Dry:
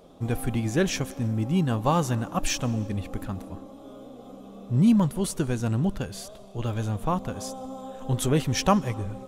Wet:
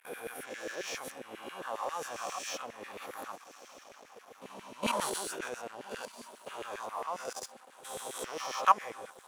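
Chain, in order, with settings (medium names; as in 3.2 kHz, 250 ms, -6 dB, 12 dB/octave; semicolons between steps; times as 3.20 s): reverse spectral sustain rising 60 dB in 1.37 s; level held to a coarse grid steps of 16 dB; echo that smears into a reverb 1246 ms, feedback 43%, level -12.5 dB; crossover distortion -47 dBFS; LFO high-pass saw down 7.4 Hz 400–2100 Hz; 4.83–5.52 s: decay stretcher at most 23 dB/s; trim -4.5 dB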